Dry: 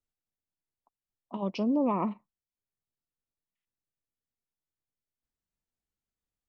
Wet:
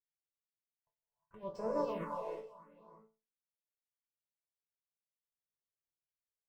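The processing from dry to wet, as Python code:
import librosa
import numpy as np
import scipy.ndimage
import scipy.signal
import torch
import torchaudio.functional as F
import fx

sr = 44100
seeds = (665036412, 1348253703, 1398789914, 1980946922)

y = fx.lower_of_two(x, sr, delay_ms=1.9)
y = fx.highpass(y, sr, hz=83.0, slope=6)
y = fx.peak_eq(y, sr, hz=4600.0, db=-5.0, octaves=1.9)
y = fx.resonator_bank(y, sr, root=45, chord='sus4', decay_s=0.33)
y = y + 10.0 ** (-16.5 / 20.0) * np.pad(y, (int(594 * sr / 1000.0), 0))[:len(y)]
y = fx.rev_gated(y, sr, seeds[0], gate_ms=380, shape='rising', drr_db=0.0)
y = fx.phaser_stages(y, sr, stages=4, low_hz=190.0, high_hz=3200.0, hz=0.74, feedback_pct=20)
y = fx.upward_expand(y, sr, threshold_db=-55.0, expansion=1.5)
y = y * librosa.db_to_amplitude(10.0)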